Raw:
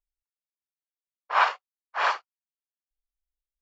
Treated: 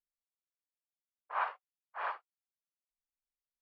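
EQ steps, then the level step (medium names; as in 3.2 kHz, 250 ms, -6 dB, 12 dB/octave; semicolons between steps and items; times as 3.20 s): distance through air 360 m; bass shelf 350 Hz -10 dB; treble shelf 2.7 kHz -10.5 dB; -8.0 dB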